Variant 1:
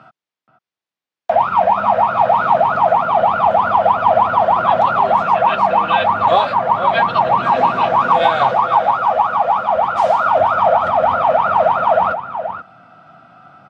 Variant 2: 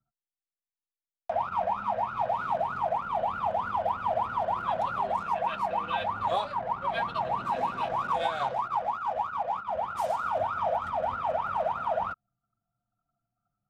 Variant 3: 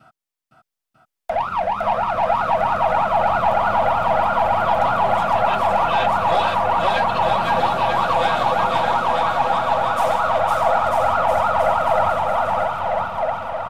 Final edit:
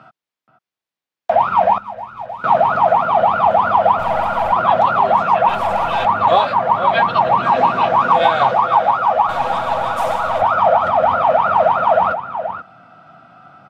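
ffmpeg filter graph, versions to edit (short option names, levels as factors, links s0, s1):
-filter_complex "[2:a]asplit=3[s0][s1][s2];[0:a]asplit=5[s3][s4][s5][s6][s7];[s3]atrim=end=1.782[s8];[1:a]atrim=start=1.778:end=2.442[s9];[s4]atrim=start=2.438:end=3.992[s10];[s0]atrim=start=3.988:end=4.522[s11];[s5]atrim=start=4.518:end=5.492[s12];[s1]atrim=start=5.488:end=6.052[s13];[s6]atrim=start=6.048:end=9.292[s14];[s2]atrim=start=9.288:end=10.422[s15];[s7]atrim=start=10.418[s16];[s8][s9]acrossfade=d=0.004:c1=hsin:c2=hsin[s17];[s17][s10]acrossfade=d=0.004:c1=hsin:c2=hsin[s18];[s18][s11]acrossfade=d=0.004:c1=hsin:c2=hsin[s19];[s19][s12]acrossfade=d=0.004:c1=hsin:c2=hsin[s20];[s20][s13]acrossfade=d=0.004:c1=hsin:c2=hsin[s21];[s21][s14]acrossfade=d=0.004:c1=hsin:c2=hsin[s22];[s22][s15]acrossfade=d=0.004:c1=hsin:c2=hsin[s23];[s23][s16]acrossfade=d=0.004:c1=hsin:c2=hsin"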